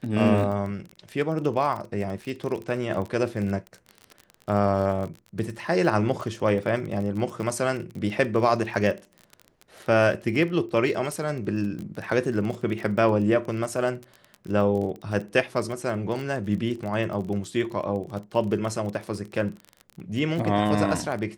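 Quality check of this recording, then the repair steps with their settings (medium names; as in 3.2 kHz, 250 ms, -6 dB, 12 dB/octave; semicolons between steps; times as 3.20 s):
crackle 26 per s -31 dBFS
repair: de-click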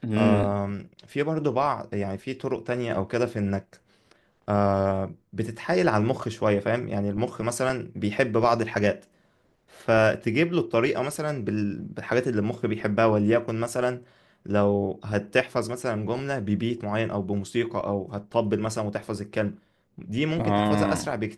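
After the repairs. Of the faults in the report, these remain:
nothing left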